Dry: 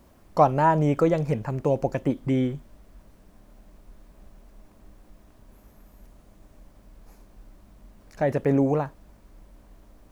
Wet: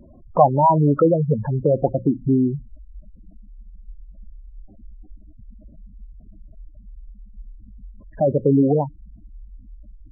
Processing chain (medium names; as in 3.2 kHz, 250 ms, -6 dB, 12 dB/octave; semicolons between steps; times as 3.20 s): hum notches 60/120/180 Hz; spectral gate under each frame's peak -10 dB strong; in parallel at +1 dB: compression, threshold -33 dBFS, peak gain reduction 18 dB; on the sum: trim +4 dB